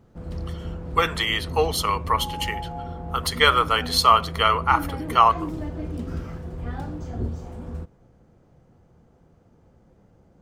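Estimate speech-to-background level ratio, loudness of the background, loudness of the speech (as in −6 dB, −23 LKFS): 11.5 dB, −33.0 LKFS, −21.5 LKFS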